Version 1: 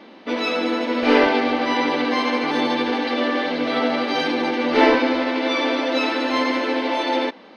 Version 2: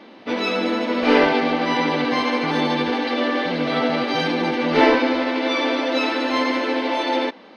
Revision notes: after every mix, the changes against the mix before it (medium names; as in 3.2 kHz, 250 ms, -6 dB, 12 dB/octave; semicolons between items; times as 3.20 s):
speech +11.5 dB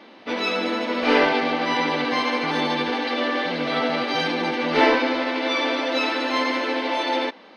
master: add bass shelf 460 Hz -6 dB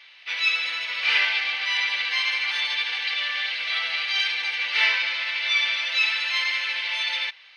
speech +3.5 dB; master: add resonant high-pass 2.4 kHz, resonance Q 1.9